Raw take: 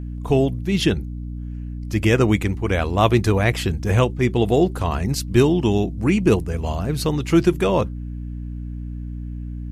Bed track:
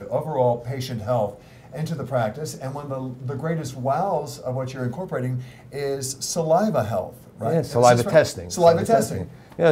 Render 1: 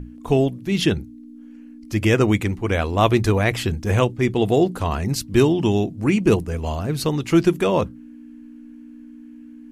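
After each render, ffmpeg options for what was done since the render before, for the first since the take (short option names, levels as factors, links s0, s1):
-af "bandreject=f=60:t=h:w=6,bandreject=f=120:t=h:w=6,bandreject=f=180:t=h:w=6"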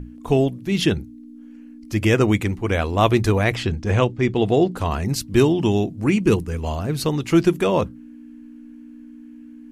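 -filter_complex "[0:a]asettb=1/sr,asplit=3[s0][s1][s2];[s0]atrim=end=3.554[s3];[s1]atrim=start=3.55:end=4.77,asetpts=PTS-STARTPTS,afade=t=in:d=0.004:c=qsin,afade=t=out:st=1.216:d=0.004:c=qsin,lowpass=6000[s4];[s2]atrim=start=4.766[s5];[s3][s4]acrossfade=d=0.004:c1=hsin:c2=qsin[s6];[s6][s5]acrossfade=d=0.004:c1=qsin:c2=hsin,asettb=1/sr,asplit=3[s7][s8][s9];[s7]atrim=end=6.184[s10];[s8]atrim=start=6.18:end=6.63,asetpts=PTS-STARTPTS,afade=t=in:d=0.004:c=qsin,afade=t=out:st=0.446:d=0.004:c=qsin,equalizer=f=660:w=2.8:g=-9[s11];[s9]atrim=start=6.626[s12];[s10][s11]acrossfade=d=0.004:c1=hsin:c2=qsin[s13];[s13][s12]acrossfade=d=0.004:c1=qsin:c2=hsin"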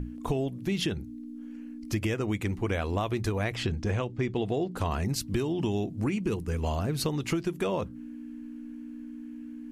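-af "alimiter=limit=0.316:level=0:latency=1:release=215,acompressor=threshold=0.0501:ratio=6"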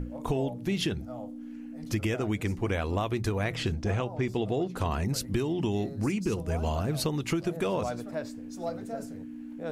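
-filter_complex "[1:a]volume=0.1[s0];[0:a][s0]amix=inputs=2:normalize=0"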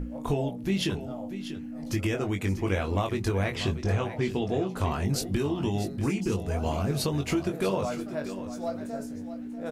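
-filter_complex "[0:a]asplit=2[s0][s1];[s1]adelay=21,volume=0.531[s2];[s0][s2]amix=inputs=2:normalize=0,aecho=1:1:641:0.251"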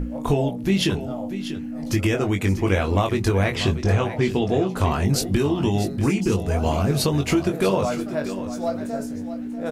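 -af "volume=2.24"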